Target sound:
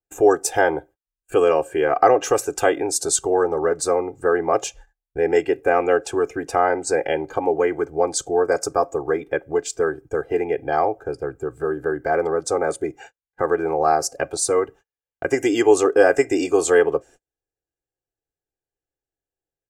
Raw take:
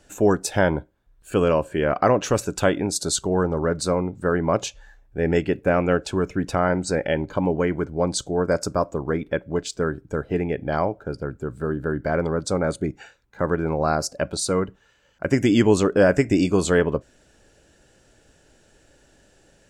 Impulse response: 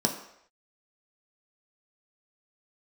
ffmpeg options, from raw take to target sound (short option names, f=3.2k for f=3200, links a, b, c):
-filter_complex "[0:a]equalizer=f=160:t=o:w=0.67:g=8,equalizer=f=630:t=o:w=0.67:g=7,equalizer=f=4k:t=o:w=0.67:g=-9,acrossover=split=310[a][b];[a]acompressor=threshold=-36dB:ratio=12[c];[c][b]amix=inputs=2:normalize=0,agate=range=-40dB:threshold=-43dB:ratio=16:detection=peak,aecho=1:1:2.5:0.96,adynamicequalizer=threshold=0.0158:dfrequency=3800:dqfactor=0.7:tfrequency=3800:tqfactor=0.7:attack=5:release=100:ratio=0.375:range=2:mode=boostabove:tftype=highshelf,volume=-1dB"